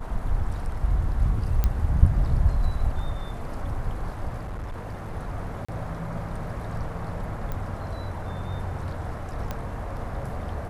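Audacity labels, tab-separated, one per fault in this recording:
1.640000	1.640000	pop -11 dBFS
4.410000	5.160000	clipped -29.5 dBFS
5.650000	5.680000	dropout 35 ms
7.520000	7.520000	pop -19 dBFS
9.510000	9.510000	pop -16 dBFS

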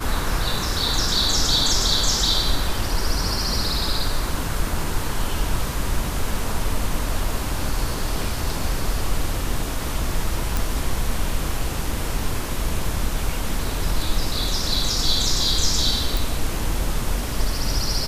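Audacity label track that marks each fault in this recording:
10.570000	10.570000	pop
16.170000	16.170000	pop

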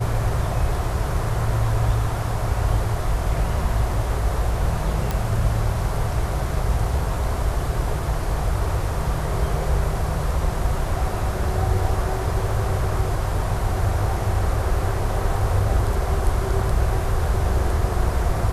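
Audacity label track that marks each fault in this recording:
5.110000	5.110000	pop

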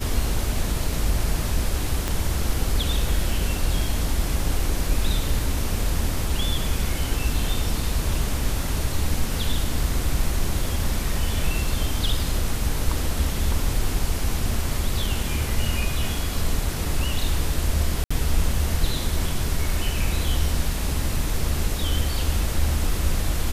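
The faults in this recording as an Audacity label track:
2.080000	2.080000	pop -10 dBFS
18.040000	18.110000	dropout 65 ms

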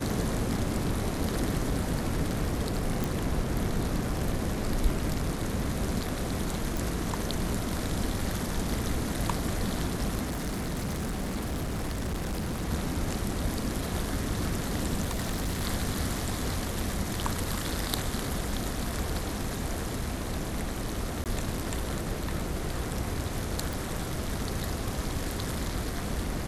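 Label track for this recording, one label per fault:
3.040000	3.040000	pop
6.770000	6.770000	pop
10.240000	12.700000	clipped -28 dBFS
15.010000	15.630000	clipped -26 dBFS
21.240000	21.260000	dropout 18 ms
23.730000	23.730000	pop

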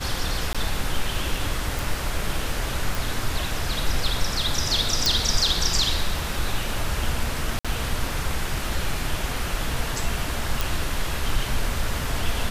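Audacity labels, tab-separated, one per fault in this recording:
0.530000	0.550000	dropout 16 ms
1.790000	1.790000	pop
2.950000	2.950000	pop
5.060000	5.060000	pop
7.590000	7.650000	dropout 56 ms
10.610000	10.610000	pop

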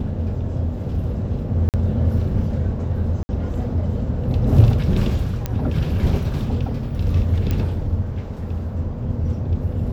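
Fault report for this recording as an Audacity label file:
1.690000	1.740000	dropout 48 ms
3.230000	3.290000	dropout 60 ms
5.460000	5.460000	pop -10 dBFS
7.510000	7.510000	pop -10 dBFS

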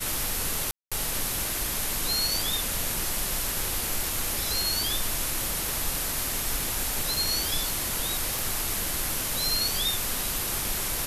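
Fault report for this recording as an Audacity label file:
0.710000	0.920000	dropout 206 ms
5.690000	5.690000	pop
8.390000	8.390000	pop

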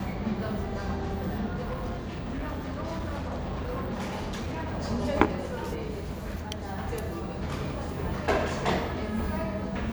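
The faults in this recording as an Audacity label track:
1.540000	4.800000	clipped -29 dBFS

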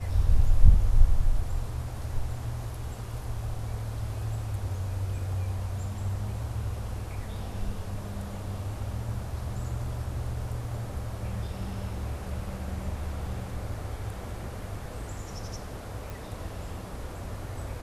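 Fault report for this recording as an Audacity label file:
16.100000	16.100000	pop

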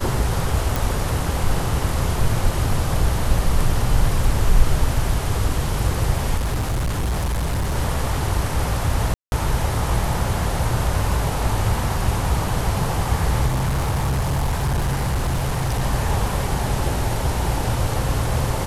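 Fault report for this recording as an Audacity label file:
0.760000	0.760000	pop
6.370000	7.760000	clipped -18.5 dBFS
9.140000	9.320000	dropout 181 ms
13.460000	15.830000	clipped -17 dBFS

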